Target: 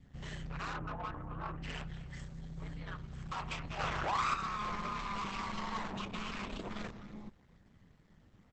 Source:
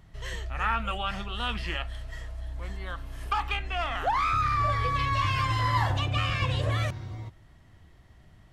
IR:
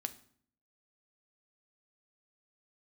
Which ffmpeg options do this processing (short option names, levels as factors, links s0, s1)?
-filter_complex "[0:a]asplit=3[s0][s1][s2];[s0]afade=t=out:st=2.13:d=0.02[s3];[s1]aemphasis=mode=production:type=50fm,afade=t=in:st=2.13:d=0.02,afade=t=out:st=2.62:d=0.02[s4];[s2]afade=t=in:st=2.62:d=0.02[s5];[s3][s4][s5]amix=inputs=3:normalize=0,asplit=2[s6][s7];[s7]adelay=250,highpass=300,lowpass=3400,asoftclip=type=hard:threshold=0.0708,volume=0.126[s8];[s6][s8]amix=inputs=2:normalize=0,aeval=exprs='val(0)*sin(2*PI*100*n/s)':c=same,asplit=3[s9][s10][s11];[s9]afade=t=out:st=0.73:d=0.02[s12];[s10]lowpass=f=1400:w=0.5412,lowpass=f=1400:w=1.3066,afade=t=in:st=0.73:d=0.02,afade=t=out:st=1.62:d=0.02[s13];[s11]afade=t=in:st=1.62:d=0.02[s14];[s12][s13][s14]amix=inputs=3:normalize=0,asoftclip=type=tanh:threshold=0.0224,adynamicequalizer=threshold=0.00316:dfrequency=1100:dqfactor=3.2:tfrequency=1100:tqfactor=3.2:attack=5:release=100:ratio=0.375:range=2:mode=boostabove:tftype=bell,asettb=1/sr,asplit=3[s15][s16][s17];[s15]atrim=end=3.794[s18];[s16]atrim=start=3.79:end=4.34,asetpts=PTS-STARTPTS,afade=t=in:d=0.004:c=qsin,afade=t=out:st=0.546:d=0.004:c=qsin,acontrast=26[s19];[s17]atrim=start=4.336[s20];[s18][s19]acrossfade=d=0.004:c1=hsin:c2=qsin[s21];[s21][s20]acrossfade=d=0.004:c1=qsin:c2=hsin,volume=0.841" -ar 48000 -c:a libopus -b:a 10k